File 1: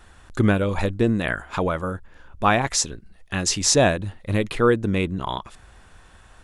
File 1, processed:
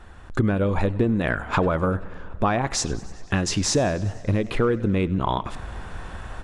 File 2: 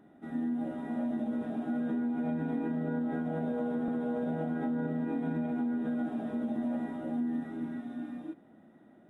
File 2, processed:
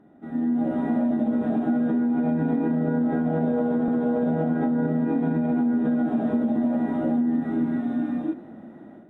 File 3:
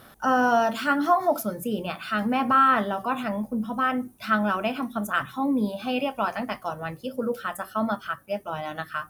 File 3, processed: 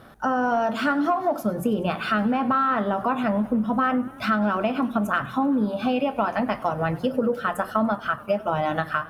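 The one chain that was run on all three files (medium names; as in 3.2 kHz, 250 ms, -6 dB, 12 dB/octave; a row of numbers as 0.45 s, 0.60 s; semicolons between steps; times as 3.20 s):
level rider gain up to 10.5 dB; saturation -2 dBFS; treble shelf 2 kHz -9 dB; compression 6:1, threshold -24 dBFS; treble shelf 11 kHz -9 dB; modulated delay 97 ms, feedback 75%, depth 126 cents, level -21 dB; normalise loudness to -24 LUFS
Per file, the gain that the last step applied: +5.5 dB, +4.0 dB, +4.0 dB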